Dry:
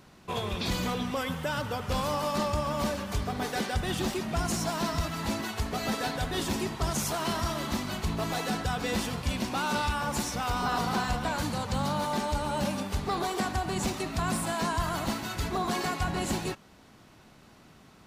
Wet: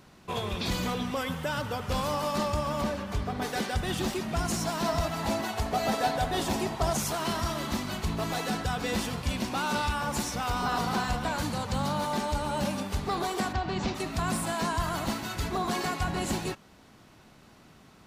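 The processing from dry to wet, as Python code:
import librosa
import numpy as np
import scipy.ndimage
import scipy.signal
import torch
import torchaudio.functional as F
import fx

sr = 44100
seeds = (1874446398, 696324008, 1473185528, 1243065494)

y = fx.high_shelf(x, sr, hz=4400.0, db=-8.5, at=(2.81, 3.42))
y = fx.peak_eq(y, sr, hz=710.0, db=8.5, octaves=0.67, at=(4.85, 6.97))
y = fx.lowpass(y, sr, hz=5200.0, slope=24, at=(13.52, 13.94), fade=0.02)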